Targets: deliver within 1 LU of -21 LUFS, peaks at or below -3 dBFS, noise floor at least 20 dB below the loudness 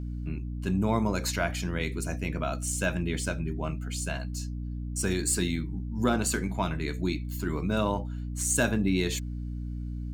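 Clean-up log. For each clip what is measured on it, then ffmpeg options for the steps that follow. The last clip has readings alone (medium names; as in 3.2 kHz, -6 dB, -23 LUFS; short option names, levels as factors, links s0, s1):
hum 60 Hz; highest harmonic 300 Hz; hum level -32 dBFS; loudness -30.0 LUFS; peak level -11.0 dBFS; loudness target -21.0 LUFS
-> -af "bandreject=f=60:t=h:w=6,bandreject=f=120:t=h:w=6,bandreject=f=180:t=h:w=6,bandreject=f=240:t=h:w=6,bandreject=f=300:t=h:w=6"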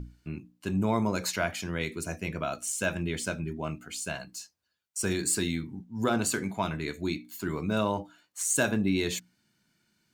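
hum not found; loudness -30.5 LUFS; peak level -11.5 dBFS; loudness target -21.0 LUFS
-> -af "volume=2.99,alimiter=limit=0.708:level=0:latency=1"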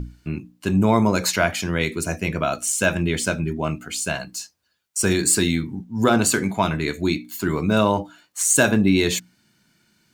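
loudness -21.0 LUFS; peak level -3.0 dBFS; noise floor -65 dBFS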